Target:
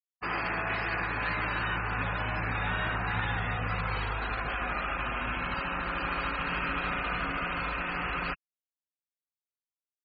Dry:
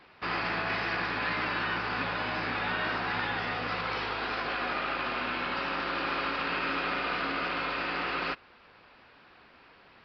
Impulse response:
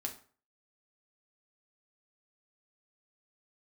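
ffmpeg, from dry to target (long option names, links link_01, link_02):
-af "afftfilt=real='re*gte(hypot(re,im),0.0224)':imag='im*gte(hypot(re,im),0.0224)':win_size=1024:overlap=0.75,asubboost=boost=9:cutoff=110"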